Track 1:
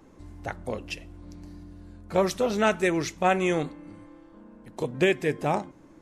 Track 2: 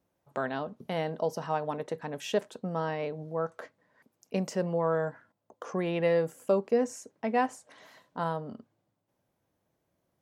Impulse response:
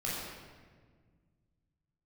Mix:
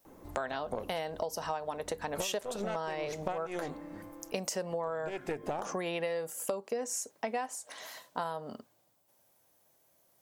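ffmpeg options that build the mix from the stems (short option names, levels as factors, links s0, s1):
-filter_complex "[0:a]acompressor=threshold=0.0501:ratio=6,aeval=exprs='0.188*(cos(1*acos(clip(val(0)/0.188,-1,1)))-cos(1*PI/2))+0.0335*(cos(4*acos(clip(val(0)/0.188,-1,1)))-cos(4*PI/2))':c=same,adelay=50,volume=0.631[s0];[1:a]crystalizer=i=9:c=0,volume=0.631,asplit=2[s1][s2];[s2]apad=whole_len=267586[s3];[s0][s3]sidechaincompress=threshold=0.0178:ratio=8:attack=8.5:release=176[s4];[s4][s1]amix=inputs=2:normalize=0,equalizer=f=690:w=0.74:g=8,acompressor=threshold=0.0282:ratio=12"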